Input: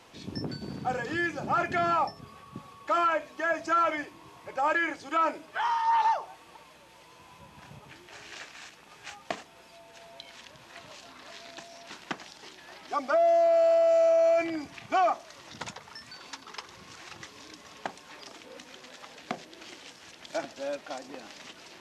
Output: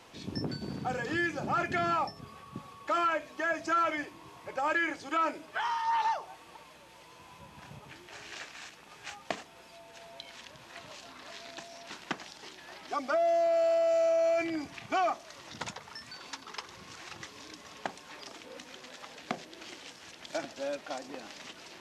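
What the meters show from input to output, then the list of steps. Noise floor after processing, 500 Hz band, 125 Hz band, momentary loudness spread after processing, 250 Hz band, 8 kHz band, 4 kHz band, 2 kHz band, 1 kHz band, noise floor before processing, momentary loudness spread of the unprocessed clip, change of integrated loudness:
-54 dBFS, -4.0 dB, n/a, 20 LU, -0.5 dB, 0.0 dB, 0.0 dB, -1.5 dB, -4.0 dB, -54 dBFS, 24 LU, -4.0 dB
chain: dynamic EQ 820 Hz, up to -5 dB, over -34 dBFS, Q 0.8

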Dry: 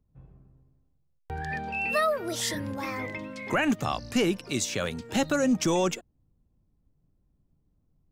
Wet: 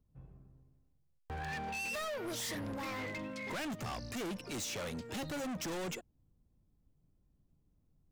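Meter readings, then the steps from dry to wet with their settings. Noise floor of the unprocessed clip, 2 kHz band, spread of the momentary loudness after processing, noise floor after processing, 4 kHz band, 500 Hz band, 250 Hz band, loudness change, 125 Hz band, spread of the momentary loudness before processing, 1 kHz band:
-70 dBFS, -10.0 dB, 6 LU, -73 dBFS, -9.0 dB, -13.0 dB, -13.0 dB, -11.5 dB, -9.0 dB, 10 LU, -11.0 dB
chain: overloaded stage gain 34.5 dB; gain -3 dB

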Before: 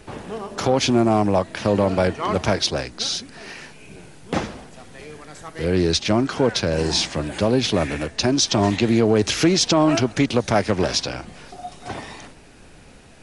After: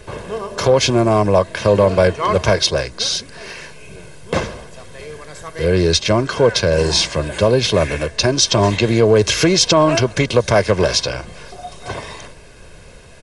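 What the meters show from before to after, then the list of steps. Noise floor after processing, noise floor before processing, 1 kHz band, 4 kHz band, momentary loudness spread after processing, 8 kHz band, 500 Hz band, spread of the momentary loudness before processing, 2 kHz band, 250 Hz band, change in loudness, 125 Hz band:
-40 dBFS, -46 dBFS, +4.0 dB, +5.0 dB, 19 LU, +5.5 dB, +6.5 dB, 19 LU, +6.0 dB, 0.0 dB, +4.5 dB, +5.5 dB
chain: comb 1.9 ms, depth 58%; gain +4 dB

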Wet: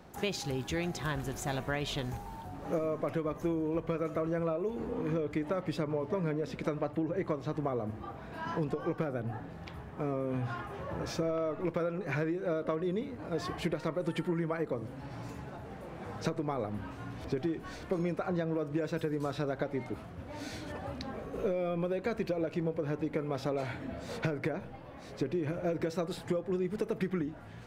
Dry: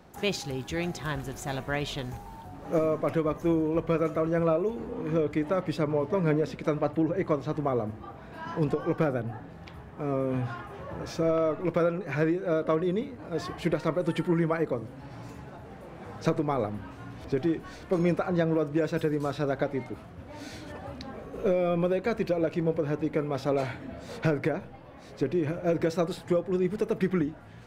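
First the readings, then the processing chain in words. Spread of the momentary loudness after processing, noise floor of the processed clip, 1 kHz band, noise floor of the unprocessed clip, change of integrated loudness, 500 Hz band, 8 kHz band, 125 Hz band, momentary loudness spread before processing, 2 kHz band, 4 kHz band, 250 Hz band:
10 LU, -47 dBFS, -5.0 dB, -46 dBFS, -6.5 dB, -6.0 dB, n/a, -5.0 dB, 16 LU, -4.5 dB, -3.0 dB, -5.5 dB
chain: compressor, threshold -29 dBFS, peak gain reduction 10 dB

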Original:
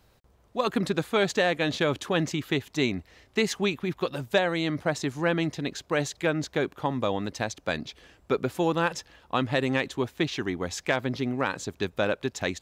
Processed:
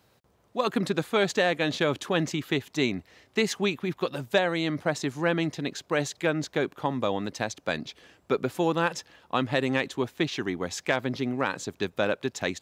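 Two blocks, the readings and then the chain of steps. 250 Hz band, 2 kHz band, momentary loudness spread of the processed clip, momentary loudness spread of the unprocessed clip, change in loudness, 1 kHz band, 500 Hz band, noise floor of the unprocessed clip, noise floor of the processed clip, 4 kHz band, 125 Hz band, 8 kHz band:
0.0 dB, 0.0 dB, 7 LU, 7 LU, 0.0 dB, 0.0 dB, 0.0 dB, -62 dBFS, -65 dBFS, 0.0 dB, -1.5 dB, 0.0 dB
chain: HPF 110 Hz 12 dB/oct

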